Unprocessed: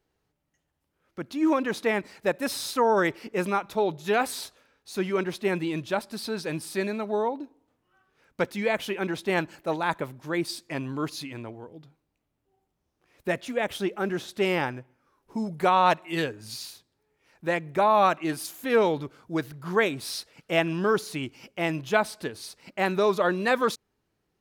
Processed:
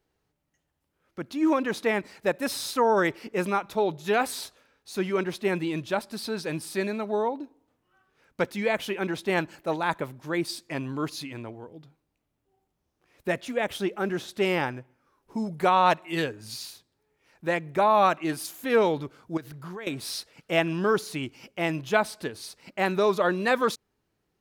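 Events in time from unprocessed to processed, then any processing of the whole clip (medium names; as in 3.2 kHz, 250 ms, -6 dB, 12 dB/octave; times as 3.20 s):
19.37–19.87 s: compression 8:1, threshold -35 dBFS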